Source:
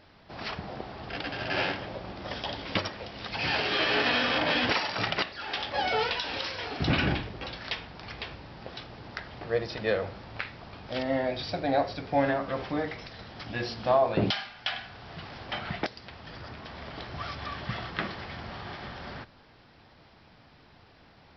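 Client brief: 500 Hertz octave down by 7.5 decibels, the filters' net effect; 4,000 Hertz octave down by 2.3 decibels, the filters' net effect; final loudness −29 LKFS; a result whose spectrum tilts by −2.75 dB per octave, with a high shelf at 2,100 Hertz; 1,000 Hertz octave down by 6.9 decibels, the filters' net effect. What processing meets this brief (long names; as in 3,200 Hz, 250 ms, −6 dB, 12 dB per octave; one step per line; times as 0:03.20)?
parametric band 500 Hz −7.5 dB
parametric band 1,000 Hz −7 dB
high-shelf EQ 2,100 Hz +3.5 dB
parametric band 4,000 Hz −6 dB
level +5 dB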